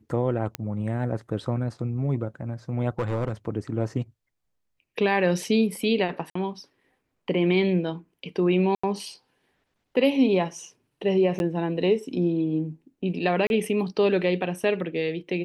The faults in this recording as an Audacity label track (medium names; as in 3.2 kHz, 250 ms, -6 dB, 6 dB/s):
0.550000	0.550000	pop -13 dBFS
2.990000	3.320000	clipped -21 dBFS
6.300000	6.350000	dropout 54 ms
8.750000	8.840000	dropout 85 ms
11.390000	11.400000	dropout 11 ms
13.470000	13.500000	dropout 31 ms